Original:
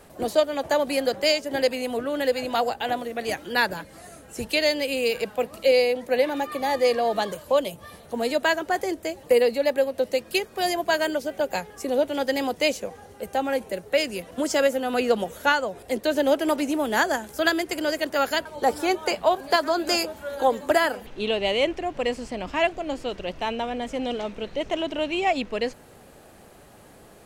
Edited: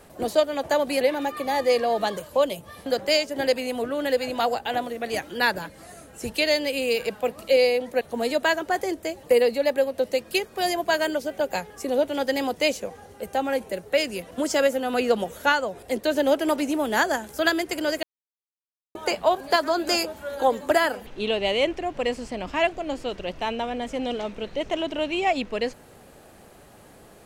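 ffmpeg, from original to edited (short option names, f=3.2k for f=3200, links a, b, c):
-filter_complex "[0:a]asplit=6[a][b][c][d][e][f];[a]atrim=end=1.012[g];[b]atrim=start=6.158:end=8.012[h];[c]atrim=start=1.008:end=6.162[i];[d]atrim=start=8.008:end=18.03,asetpts=PTS-STARTPTS,afade=t=out:st=10.018:d=0.004:c=hsin[j];[e]atrim=start=18.03:end=18.95,asetpts=PTS-STARTPTS,volume=0[k];[f]atrim=start=18.95,asetpts=PTS-STARTPTS,afade=t=in:d=0.004:c=hsin[l];[g][h]acrossfade=d=0.004:c1=hsin:c2=hsin[m];[m][i]acrossfade=d=0.004:c1=hsin:c2=hsin[n];[j][k][l]concat=n=3:v=0:a=1[o];[n][o]acrossfade=d=0.004:c1=hsin:c2=hsin"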